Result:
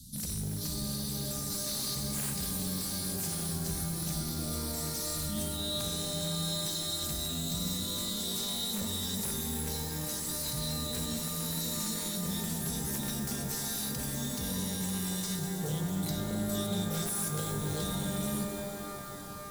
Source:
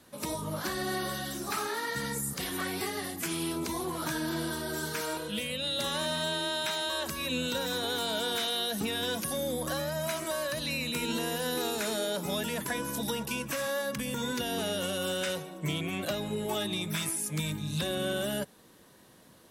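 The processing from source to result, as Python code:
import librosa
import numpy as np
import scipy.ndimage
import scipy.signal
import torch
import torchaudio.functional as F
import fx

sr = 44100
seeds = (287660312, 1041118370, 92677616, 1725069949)

p1 = scipy.signal.sosfilt(scipy.signal.cheby2(4, 40, [380.0, 2400.0], 'bandstop', fs=sr, output='sos'), x)
p2 = fx.low_shelf(p1, sr, hz=68.0, db=11.0)
p3 = fx.over_compress(p2, sr, threshold_db=-45.0, ratio=-0.5)
p4 = p2 + F.gain(torch.from_numpy(p3), -3.0).numpy()
p5 = 10.0 ** (-31.5 / 20.0) * (np.abs((p4 / 10.0 ** (-31.5 / 20.0) + 3.0) % 4.0 - 2.0) - 1.0)
p6 = fx.rev_shimmer(p5, sr, seeds[0], rt60_s=3.8, semitones=12, shimmer_db=-2, drr_db=5.0)
y = F.gain(torch.from_numpy(p6), 1.5).numpy()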